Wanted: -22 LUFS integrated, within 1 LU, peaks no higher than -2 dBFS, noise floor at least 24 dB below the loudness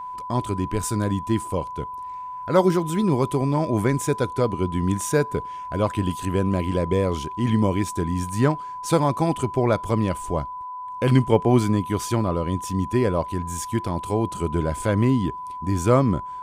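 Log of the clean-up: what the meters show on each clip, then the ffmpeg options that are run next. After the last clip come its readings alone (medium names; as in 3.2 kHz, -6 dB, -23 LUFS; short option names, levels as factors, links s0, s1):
steady tone 1 kHz; tone level -31 dBFS; loudness -23.5 LUFS; peak level -4.0 dBFS; loudness target -22.0 LUFS
-> -af "bandreject=f=1000:w=30"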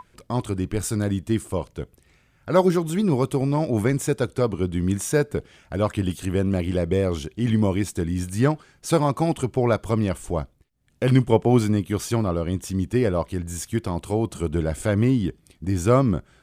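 steady tone not found; loudness -23.5 LUFS; peak level -4.5 dBFS; loudness target -22.0 LUFS
-> -af "volume=1.19"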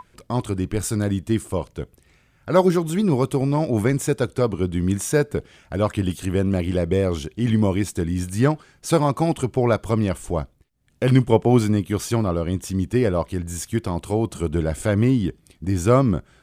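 loudness -22.0 LUFS; peak level -3.0 dBFS; noise floor -59 dBFS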